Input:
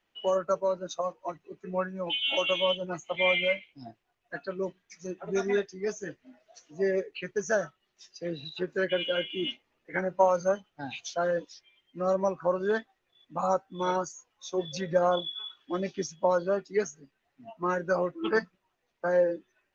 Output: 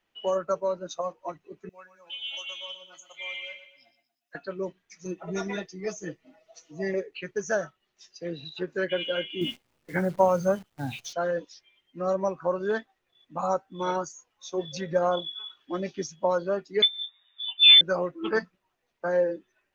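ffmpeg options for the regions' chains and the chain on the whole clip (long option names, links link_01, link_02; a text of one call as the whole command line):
ffmpeg -i in.wav -filter_complex "[0:a]asettb=1/sr,asplit=3[link_01][link_02][link_03];[link_01]atrim=end=1.694[link_04];[link_02]atrim=start=1.69:end=4.35,asetpts=PTS-STARTPTS,afade=type=in:duration=0.004:curve=qsin,afade=type=out:start_time=2.656:duration=0.004:curve=qsin,aderivative,aecho=1:1:120|240|360|480:0.282|0.118|0.0497|0.0209,atrim=end_sample=117306[link_05];[link_03]atrim=start=4.346[link_06];[link_04][link_05]acrossfade=duration=0.004:curve1=hsin:curve2=qsin[link_07];[link_07][link_06]acrossfade=duration=0.004:curve1=qsin:curve2=hsin,asettb=1/sr,asplit=3[link_08][link_09][link_10];[link_08]atrim=end=5.054[link_11];[link_09]atrim=start=5.05:end=6.94,asetpts=PTS-STARTPTS,afade=type=in:duration=0.004:curve=qsin,afade=type=out:start_time=1.886:duration=0.004:curve=qsin,bandreject=frequency=1600:width=5.8,aecho=1:1:6.2:0.79,atrim=end_sample=83349[link_12];[link_10]atrim=start=6.936[link_13];[link_11][link_12]acrossfade=duration=0.004:curve1=hsin:curve2=qsin[link_14];[link_14][link_13]acrossfade=duration=0.004:curve1=qsin:curve2=hsin,asettb=1/sr,asplit=3[link_15][link_16][link_17];[link_15]atrim=end=9.414[link_18];[link_16]atrim=start=9.41:end=11.13,asetpts=PTS-STARTPTS,afade=type=in:duration=0.004:curve=qsin,afade=type=out:start_time=1.716:duration=0.004:curve=qsin,equalizer=frequency=110:width=0.63:gain=13.5,acrusher=bits=9:dc=4:mix=0:aa=0.000001[link_19];[link_17]atrim=start=11.126[link_20];[link_18][link_19]acrossfade=duration=0.004:curve1=hsin:curve2=qsin[link_21];[link_21][link_20]acrossfade=duration=0.004:curve1=qsin:curve2=hsin,asettb=1/sr,asplit=3[link_22][link_23][link_24];[link_22]atrim=end=16.824[link_25];[link_23]atrim=start=16.82:end=17.81,asetpts=PTS-STARTPTS,afade=type=in:duration=0.004:curve=qsin,afade=type=out:start_time=0.986:duration=0.004:curve=qsin,lowshelf=frequency=270:width_type=q:width=3:gain=12.5,acontrast=46,lowpass=frequency=3100:width_type=q:width=0.5098,lowpass=frequency=3100:width_type=q:width=0.6013,lowpass=frequency=3100:width_type=q:width=0.9,lowpass=frequency=3100:width_type=q:width=2.563,afreqshift=-3700[link_26];[link_24]atrim=start=17.806[link_27];[link_25][link_26]acrossfade=duration=0.004:curve1=hsin:curve2=qsin[link_28];[link_28][link_27]acrossfade=duration=0.004:curve1=qsin:curve2=hsin" out.wav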